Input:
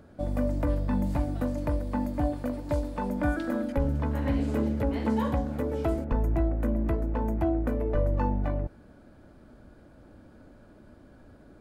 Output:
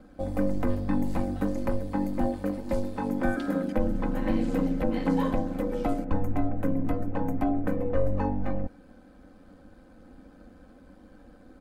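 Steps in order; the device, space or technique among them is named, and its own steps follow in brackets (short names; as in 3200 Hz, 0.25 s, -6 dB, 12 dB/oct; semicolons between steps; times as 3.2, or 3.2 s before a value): ring-modulated robot voice (ring modulator 48 Hz; comb 3.9 ms, depth 86%); gain +1.5 dB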